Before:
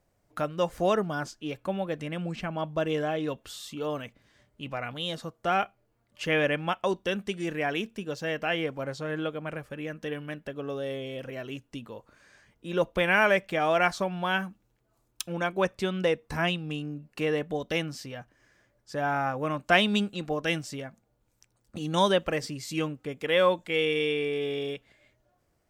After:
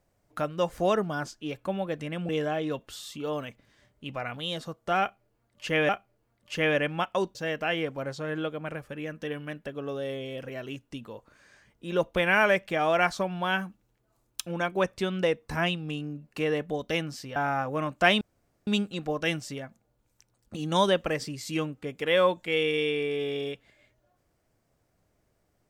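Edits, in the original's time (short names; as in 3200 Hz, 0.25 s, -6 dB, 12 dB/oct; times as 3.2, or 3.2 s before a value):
2.29–2.86 cut
5.58–6.46 loop, 2 plays
7.04–8.16 cut
18.17–19.04 cut
19.89 insert room tone 0.46 s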